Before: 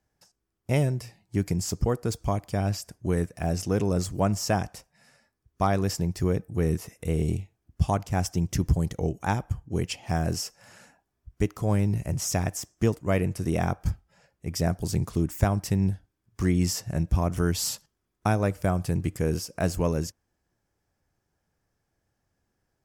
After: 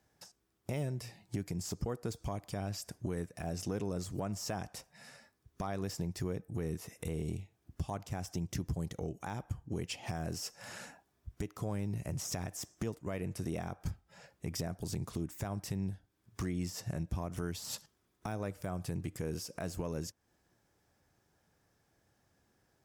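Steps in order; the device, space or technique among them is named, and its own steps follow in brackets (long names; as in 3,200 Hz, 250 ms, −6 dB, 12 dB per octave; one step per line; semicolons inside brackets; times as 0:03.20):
broadcast voice chain (high-pass filter 96 Hz 6 dB per octave; de-essing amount 65%; downward compressor 4 to 1, threshold −40 dBFS, peak gain reduction 18 dB; parametric band 3,700 Hz +3.5 dB 0.21 octaves; brickwall limiter −30.5 dBFS, peak gain reduction 8 dB)
level +5 dB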